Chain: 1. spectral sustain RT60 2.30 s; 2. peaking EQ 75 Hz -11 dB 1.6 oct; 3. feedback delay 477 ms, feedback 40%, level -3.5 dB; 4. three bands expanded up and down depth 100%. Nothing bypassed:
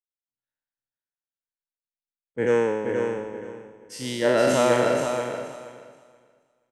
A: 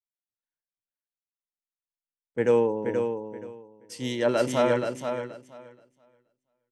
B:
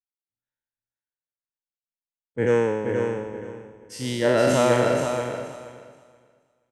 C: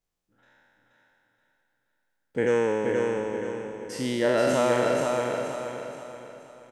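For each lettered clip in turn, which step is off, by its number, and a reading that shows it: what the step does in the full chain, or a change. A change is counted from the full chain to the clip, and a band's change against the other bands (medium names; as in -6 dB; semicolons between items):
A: 1, 8 kHz band -4.5 dB; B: 2, 125 Hz band +6.0 dB; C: 4, 8 kHz band -2.0 dB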